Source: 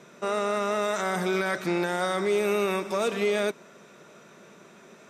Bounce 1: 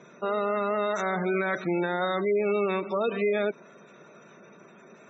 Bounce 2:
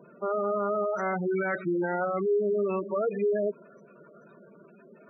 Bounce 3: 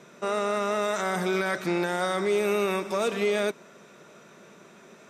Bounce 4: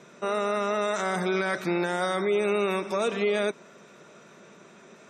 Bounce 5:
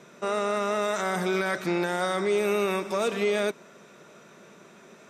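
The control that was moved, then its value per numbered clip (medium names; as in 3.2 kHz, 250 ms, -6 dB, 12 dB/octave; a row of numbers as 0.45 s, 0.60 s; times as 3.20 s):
spectral gate, under each frame's peak: -20 dB, -10 dB, -60 dB, -35 dB, -50 dB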